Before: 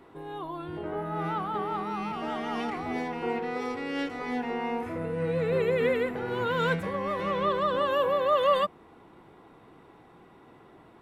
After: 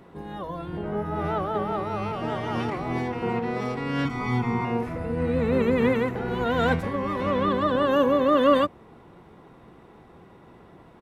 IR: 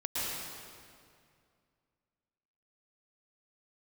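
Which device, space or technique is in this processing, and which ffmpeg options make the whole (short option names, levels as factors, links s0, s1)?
octave pedal: -filter_complex "[0:a]asplit=2[s0][s1];[s1]asetrate=22050,aresample=44100,atempo=2,volume=0.891[s2];[s0][s2]amix=inputs=2:normalize=0,asettb=1/sr,asplit=3[s3][s4][s5];[s3]atrim=end=4.054[s6];[s4]atrim=start=4.05:end=4.65,asetpts=PTS-STARTPTS,afade=t=in:d=0.004:c=qsin,afade=t=out:st=0.596:d=0.004:c=qsin,aecho=1:1:0.9:0.87,atrim=end_sample=26460[s7];[s5]atrim=start=4.646[s8];[s6][s7]acrossfade=d=0.004:c1=hsin:c2=qsin[s9];[s9][s8]acrossfade=d=0.004:c1=qsin:c2=hsin,volume=1.19"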